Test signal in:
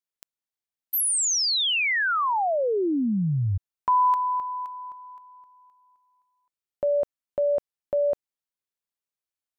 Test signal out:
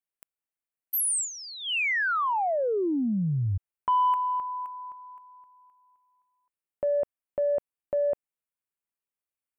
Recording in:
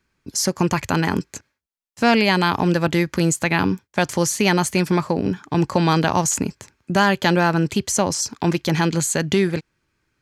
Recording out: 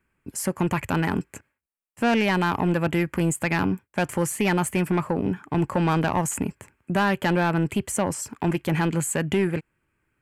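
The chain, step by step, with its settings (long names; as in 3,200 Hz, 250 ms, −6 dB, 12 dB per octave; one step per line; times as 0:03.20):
flat-topped bell 4,800 Hz −15 dB 1.1 octaves
soft clipping −12.5 dBFS
level −2 dB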